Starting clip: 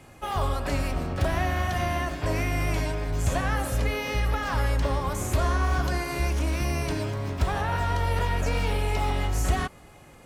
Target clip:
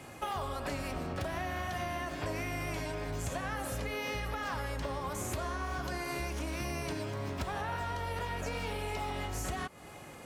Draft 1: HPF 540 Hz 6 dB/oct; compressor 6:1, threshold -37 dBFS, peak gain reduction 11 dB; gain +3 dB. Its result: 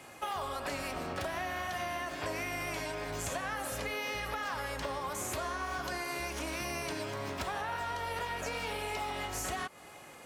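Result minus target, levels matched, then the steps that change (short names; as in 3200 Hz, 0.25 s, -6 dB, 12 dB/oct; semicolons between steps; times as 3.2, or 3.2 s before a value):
125 Hz band -7.0 dB
change: HPF 140 Hz 6 dB/oct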